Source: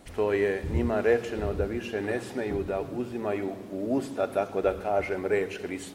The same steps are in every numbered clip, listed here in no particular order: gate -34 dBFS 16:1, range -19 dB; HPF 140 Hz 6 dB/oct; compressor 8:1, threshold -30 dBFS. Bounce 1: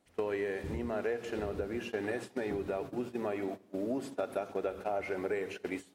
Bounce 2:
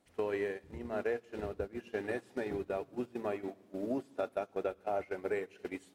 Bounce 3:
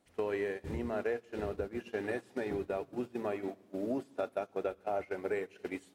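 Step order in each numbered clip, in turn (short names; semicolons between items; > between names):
gate > compressor > HPF; compressor > HPF > gate; compressor > gate > HPF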